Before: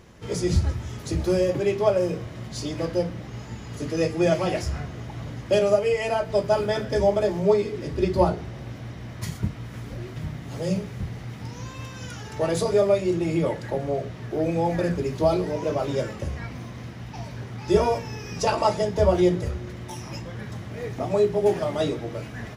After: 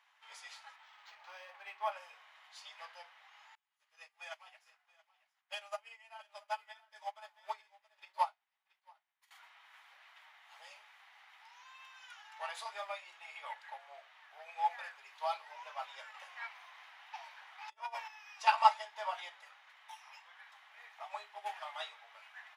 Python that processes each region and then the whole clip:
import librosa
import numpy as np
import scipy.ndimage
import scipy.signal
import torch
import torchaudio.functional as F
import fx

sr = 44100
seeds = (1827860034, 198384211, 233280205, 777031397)

y = fx.chain(x, sr, fx.dynamic_eq(hz=3700.0, q=1.1, threshold_db=-49.0, ratio=4.0, max_db=-4),
    fx.resample_linear(factor=4), at=(0.76, 1.92))
y = fx.chain(y, sr, fx.high_shelf(hz=7200.0, db=10.0),
    fx.echo_single(ms=677, db=-8.0),
    fx.upward_expand(threshold_db=-36.0, expansion=2.5), at=(3.55, 9.31))
y = fx.chain(y, sr, fx.highpass(hz=140.0, slope=24),
    fx.low_shelf(hz=360.0, db=7.5),
    fx.over_compress(threshold_db=-24.0, ratio=-0.5), at=(16.14, 18.08))
y = scipy.signal.sosfilt(scipy.signal.ellip(4, 1.0, 60, 820.0, 'highpass', fs=sr, output='sos'), y)
y = fx.high_shelf_res(y, sr, hz=4300.0, db=-7.0, q=1.5)
y = fx.upward_expand(y, sr, threshold_db=-43.0, expansion=1.5)